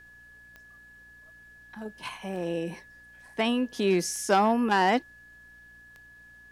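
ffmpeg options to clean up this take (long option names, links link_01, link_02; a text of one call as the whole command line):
ffmpeg -i in.wav -af "adeclick=threshold=4,bandreject=frequency=59:width_type=h:width=4,bandreject=frequency=118:width_type=h:width=4,bandreject=frequency=177:width_type=h:width=4,bandreject=frequency=236:width_type=h:width=4,bandreject=frequency=295:width_type=h:width=4,bandreject=frequency=1700:width=30,agate=range=-21dB:threshold=-45dB" out.wav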